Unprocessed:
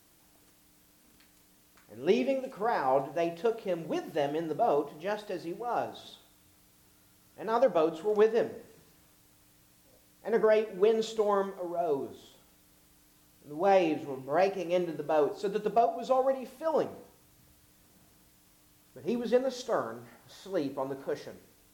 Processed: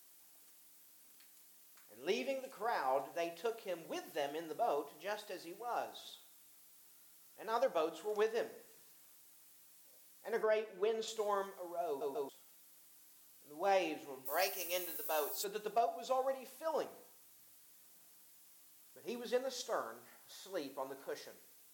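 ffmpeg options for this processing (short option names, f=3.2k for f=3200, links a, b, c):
-filter_complex "[0:a]asettb=1/sr,asplit=3[a][b][c];[a]atrim=end=10.434[d];[b]atrim=start=10.43:end=11.08,asetpts=PTS-STARTPTS,afade=t=in:d=0.004:c=qsin,afade=t=out:st=0.646:d=0.004:c=qsin,highshelf=f=5k:g=-10.5[e];[c]atrim=start=11.076[f];[d][e]acrossfade=d=0.004:c1=hsin:c2=qsin[g];[g][f]acrossfade=d=0.004:c1=qsin:c2=hsin,asplit=3[h][i][j];[h]afade=t=out:st=14.25:d=0.02[k];[i]aemphasis=mode=production:type=riaa,afade=t=in:st=14.25:d=0.02,afade=t=out:st=15.43:d=0.02[l];[j]afade=t=in:st=15.43:d=0.02[m];[k][l][m]amix=inputs=3:normalize=0,asplit=4[n][o][p][q];[n]atrim=end=12.012[r];[o]atrim=start=11.868:end=12.012[s];[p]atrim=start=11.868:end=12.012[t];[q]atrim=start=12.288[u];[r][s]acrossfade=d=0.004:c1=hsin:c2=hsin[v];[v][t]acrossfade=d=0.004:c1=hsin:c2=hsin[w];[w][u]acrossfade=d=0.004:c1=hsin:c2=hsin,highpass=f=700:p=1,highshelf=f=6k:g=9.5,volume=-5.5dB"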